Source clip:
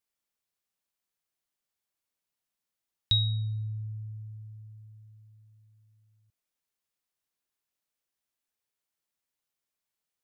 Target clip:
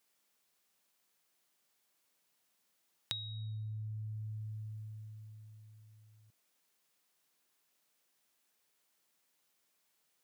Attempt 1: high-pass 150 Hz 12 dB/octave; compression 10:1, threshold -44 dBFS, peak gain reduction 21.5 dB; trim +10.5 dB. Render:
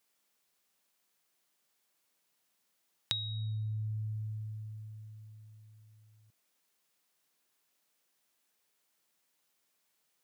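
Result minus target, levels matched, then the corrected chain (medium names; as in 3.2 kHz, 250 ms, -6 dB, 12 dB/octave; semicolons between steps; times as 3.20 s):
compression: peak gain reduction -5.5 dB
high-pass 150 Hz 12 dB/octave; compression 10:1, threshold -50 dBFS, peak gain reduction 26.5 dB; trim +10.5 dB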